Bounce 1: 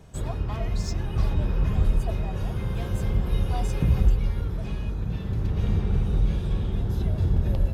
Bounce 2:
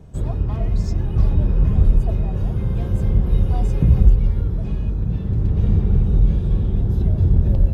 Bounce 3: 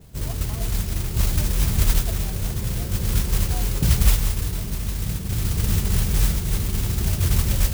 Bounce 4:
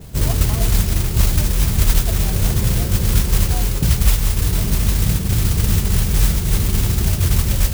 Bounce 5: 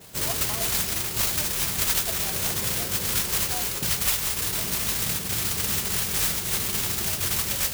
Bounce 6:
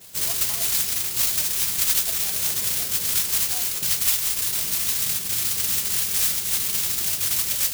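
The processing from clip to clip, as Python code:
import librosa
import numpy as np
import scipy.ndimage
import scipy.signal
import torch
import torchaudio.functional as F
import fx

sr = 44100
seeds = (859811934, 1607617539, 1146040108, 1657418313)

y1 = fx.tilt_shelf(x, sr, db=6.5, hz=690.0)
y1 = y1 * 10.0 ** (1.0 / 20.0)
y2 = fx.mod_noise(y1, sr, seeds[0], snr_db=11)
y2 = y2 * 10.0 ** (-5.0 / 20.0)
y3 = fx.rider(y2, sr, range_db=5, speed_s=0.5)
y3 = y3 * 10.0 ** (5.5 / 20.0)
y4 = fx.highpass(y3, sr, hz=870.0, slope=6)
y5 = fx.high_shelf(y4, sr, hz=2100.0, db=11.5)
y5 = y5 * 10.0 ** (-7.5 / 20.0)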